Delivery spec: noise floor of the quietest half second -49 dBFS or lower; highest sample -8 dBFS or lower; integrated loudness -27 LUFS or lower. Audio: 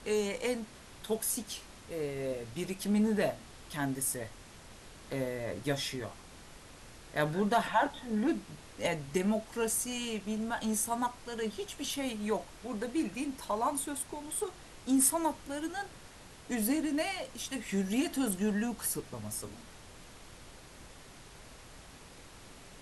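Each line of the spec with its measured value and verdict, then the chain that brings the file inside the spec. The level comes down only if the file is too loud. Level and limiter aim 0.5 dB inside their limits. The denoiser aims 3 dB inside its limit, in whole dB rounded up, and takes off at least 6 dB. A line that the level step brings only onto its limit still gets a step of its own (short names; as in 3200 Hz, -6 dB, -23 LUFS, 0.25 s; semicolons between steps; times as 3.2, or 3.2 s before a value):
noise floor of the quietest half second -52 dBFS: OK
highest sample -14.5 dBFS: OK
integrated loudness -33.5 LUFS: OK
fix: none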